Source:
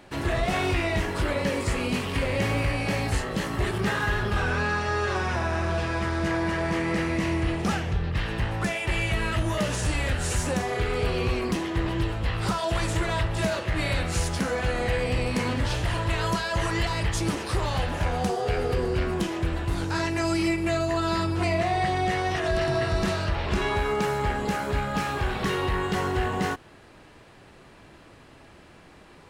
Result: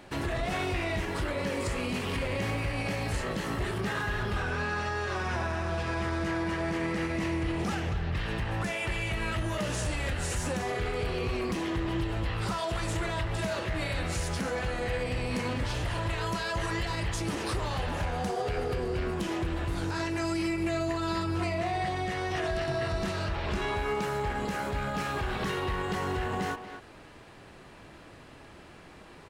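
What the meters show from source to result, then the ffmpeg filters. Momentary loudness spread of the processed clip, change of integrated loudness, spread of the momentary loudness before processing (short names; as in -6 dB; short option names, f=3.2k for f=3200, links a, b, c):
2 LU, -5.0 dB, 3 LU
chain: -filter_complex "[0:a]alimiter=limit=-23dB:level=0:latency=1:release=120,asplit=2[a][b];[b]adelay=240,highpass=300,lowpass=3.4k,asoftclip=type=hard:threshold=-31.5dB,volume=-8dB[c];[a][c]amix=inputs=2:normalize=0"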